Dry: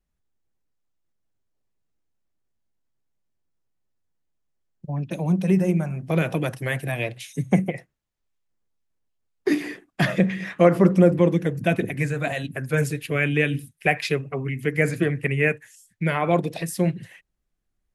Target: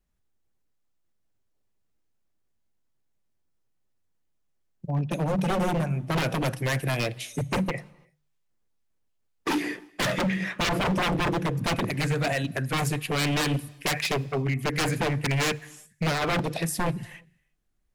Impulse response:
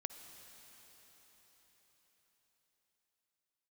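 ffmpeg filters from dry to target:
-filter_complex "[0:a]aeval=exprs='0.0841*(abs(mod(val(0)/0.0841+3,4)-2)-1)':c=same,bandreject=f=74.69:t=h:w=4,bandreject=f=149.38:t=h:w=4,asplit=2[a][b];[1:a]atrim=start_sample=2205,afade=t=out:st=0.4:d=0.01,atrim=end_sample=18081[c];[b][c]afir=irnorm=-1:irlink=0,volume=-10dB[d];[a][d]amix=inputs=2:normalize=0"

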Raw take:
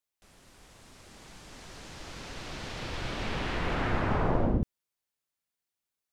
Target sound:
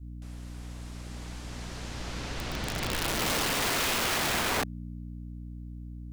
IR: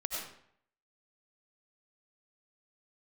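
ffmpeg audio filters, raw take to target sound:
-af "aeval=exprs='val(0)+0.00631*(sin(2*PI*60*n/s)+sin(2*PI*2*60*n/s)/2+sin(2*PI*3*60*n/s)/3+sin(2*PI*4*60*n/s)/4+sin(2*PI*5*60*n/s)/5)':c=same,adynamicequalizer=threshold=0.00501:dfrequency=200:dqfactor=1.5:tfrequency=200:tqfactor=1.5:attack=5:release=100:ratio=0.375:range=3.5:mode=boostabove:tftype=bell,aeval=exprs='(mod(25.1*val(0)+1,2)-1)/25.1':c=same,volume=4.5dB"

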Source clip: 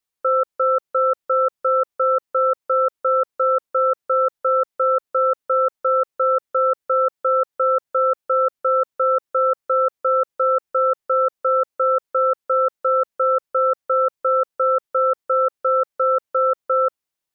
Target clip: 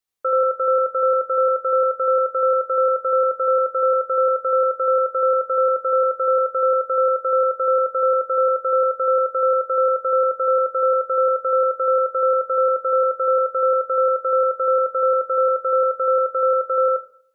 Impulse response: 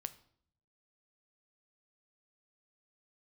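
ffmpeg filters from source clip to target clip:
-filter_complex "[0:a]asplit=2[a][b];[1:a]atrim=start_sample=2205,adelay=81[c];[b][c]afir=irnorm=-1:irlink=0,volume=2.5dB[d];[a][d]amix=inputs=2:normalize=0,volume=-2.5dB"

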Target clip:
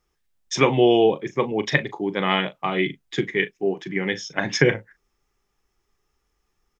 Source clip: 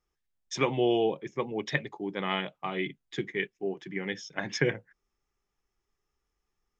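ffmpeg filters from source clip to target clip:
-filter_complex "[0:a]asplit=2[a][b];[b]adelay=38,volume=-14dB[c];[a][c]amix=inputs=2:normalize=0,volume=9dB"

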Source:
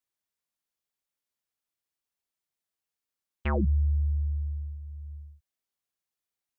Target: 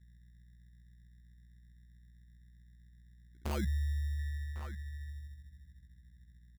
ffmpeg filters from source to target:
-filter_complex "[0:a]aeval=exprs='val(0)+0.00398*(sin(2*PI*60*n/s)+sin(2*PI*2*60*n/s)/2+sin(2*PI*3*60*n/s)/3+sin(2*PI*4*60*n/s)/4+sin(2*PI*5*60*n/s)/5)':c=same,afwtdn=0.0141,aecho=1:1:1104:0.15,acrusher=samples=24:mix=1:aa=0.000001,asettb=1/sr,asplit=3[a][b][c];[a]atrim=end=4.194[d];[b]atrim=start=4.19:end=5.1,asetpts=PTS-STARTPTS,afade=t=in:d=0.004:c=qsin,afade=t=out:st=0.906:d=0.004:c=qsin,equalizer=f=1.2k:t=o:w=1.4:g=11[e];[c]atrim=start=5.096[f];[d][e]acrossfade=d=0.004:c1=hsin:c2=qsin[g];[g][f]acrossfade=d=0.004:c1=qsin:c2=hsin,volume=-8.5dB"

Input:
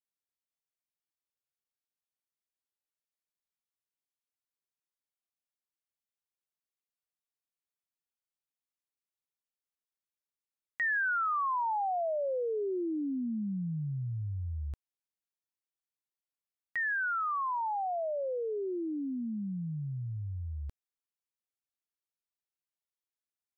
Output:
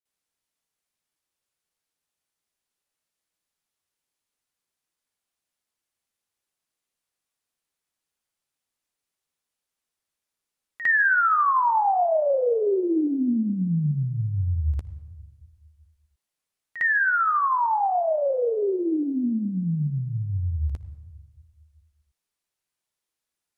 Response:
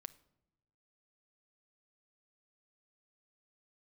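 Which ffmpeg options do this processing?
-filter_complex "[0:a]asplit=2[a][b];[1:a]atrim=start_sample=2205,asetrate=22491,aresample=44100,adelay=55[c];[b][c]afir=irnorm=-1:irlink=0,volume=16dB[d];[a][d]amix=inputs=2:normalize=0,volume=-4dB"

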